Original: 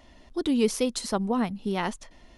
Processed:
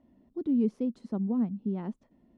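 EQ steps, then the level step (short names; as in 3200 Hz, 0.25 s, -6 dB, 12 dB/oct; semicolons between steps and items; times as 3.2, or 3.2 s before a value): band-pass 220 Hz, Q 1.8; 0.0 dB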